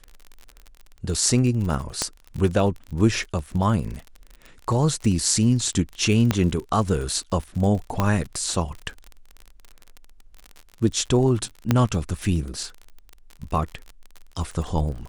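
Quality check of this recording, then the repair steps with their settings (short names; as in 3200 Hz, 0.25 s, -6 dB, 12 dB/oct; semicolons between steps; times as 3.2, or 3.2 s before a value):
crackle 41/s -30 dBFS
2.02 pop -8 dBFS
6.31 pop -6 dBFS
8 pop -8 dBFS
11.71 pop -5 dBFS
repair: de-click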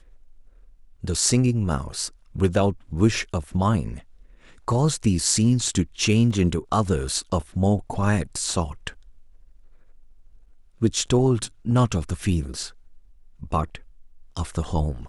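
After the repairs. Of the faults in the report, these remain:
6.31 pop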